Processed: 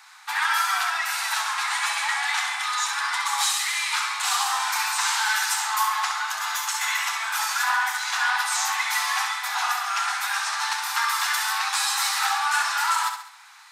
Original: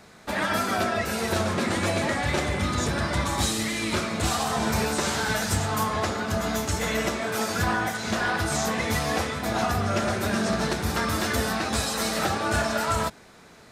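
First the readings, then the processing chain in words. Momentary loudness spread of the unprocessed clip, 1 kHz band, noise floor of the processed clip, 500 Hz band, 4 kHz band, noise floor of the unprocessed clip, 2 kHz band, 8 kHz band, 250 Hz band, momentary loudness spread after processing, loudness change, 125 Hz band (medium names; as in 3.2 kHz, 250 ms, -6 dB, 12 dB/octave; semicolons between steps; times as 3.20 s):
2 LU, +3.5 dB, -46 dBFS, -23.0 dB, +5.0 dB, -50 dBFS, +5.0 dB, +5.0 dB, under -40 dB, 3 LU, +2.5 dB, under -40 dB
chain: steep high-pass 800 Hz 96 dB/octave; flutter echo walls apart 11.5 m, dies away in 0.57 s; trim +4 dB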